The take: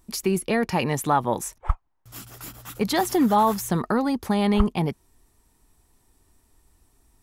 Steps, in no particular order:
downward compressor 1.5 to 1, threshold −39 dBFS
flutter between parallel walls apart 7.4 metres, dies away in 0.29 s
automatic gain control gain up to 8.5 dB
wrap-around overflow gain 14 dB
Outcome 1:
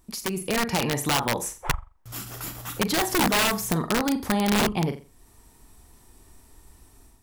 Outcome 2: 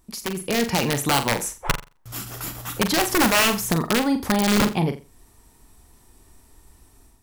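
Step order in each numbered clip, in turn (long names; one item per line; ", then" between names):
flutter between parallel walls, then wrap-around overflow, then automatic gain control, then downward compressor
wrap-around overflow, then downward compressor, then flutter between parallel walls, then automatic gain control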